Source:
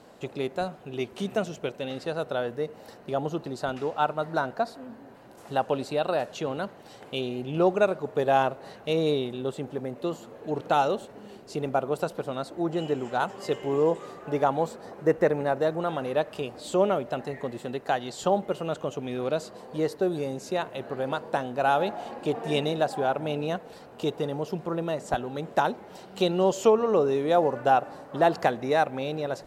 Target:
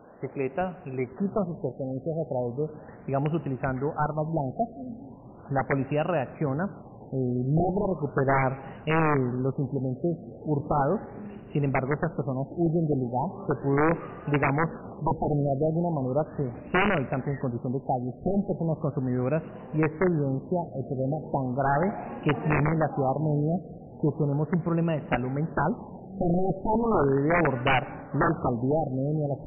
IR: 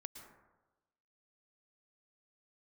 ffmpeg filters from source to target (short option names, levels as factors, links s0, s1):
-filter_complex "[0:a]asubboost=boost=3.5:cutoff=230,aeval=exprs='(mod(6.68*val(0)+1,2)-1)/6.68':c=same,asplit=2[s0][s1];[1:a]atrim=start_sample=2205[s2];[s1][s2]afir=irnorm=-1:irlink=0,volume=0.355[s3];[s0][s3]amix=inputs=2:normalize=0,afftfilt=real='re*lt(b*sr/1024,760*pow(3000/760,0.5+0.5*sin(2*PI*0.37*pts/sr)))':imag='im*lt(b*sr/1024,760*pow(3000/760,0.5+0.5*sin(2*PI*0.37*pts/sr)))':win_size=1024:overlap=0.75"